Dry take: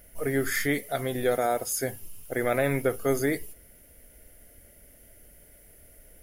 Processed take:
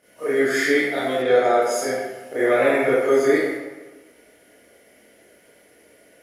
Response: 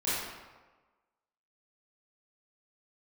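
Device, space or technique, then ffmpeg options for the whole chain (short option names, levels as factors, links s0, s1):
supermarket ceiling speaker: -filter_complex "[0:a]highpass=270,lowpass=6700[s0];[1:a]atrim=start_sample=2205[s1];[s0][s1]afir=irnorm=-1:irlink=0,asettb=1/sr,asplit=3[s2][s3][s4];[s2]atrim=end=1.224[s5];[s3]atrim=start=1.22:end=1.62,asetpts=PTS-STARTPTS,afade=t=in:d=0.004:c=qsin,afade=t=out:st=0.396:d=0.004:c=qsin,lowpass=6400[s6];[s4]atrim=start=1.616[s7];[s5][s6]acrossfade=d=0.004:c1=hsin:c2=qsin[s8];[s8][s7]acrossfade=d=0.004:c1=qsin:c2=hsin"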